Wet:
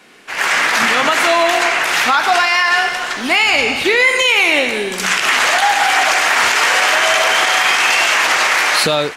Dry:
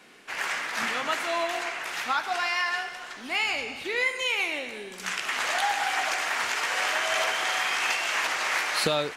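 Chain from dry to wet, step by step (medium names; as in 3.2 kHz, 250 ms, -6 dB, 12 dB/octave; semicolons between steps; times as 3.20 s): level rider gain up to 13 dB; peak limiter -11 dBFS, peak gain reduction 9 dB; trim +7 dB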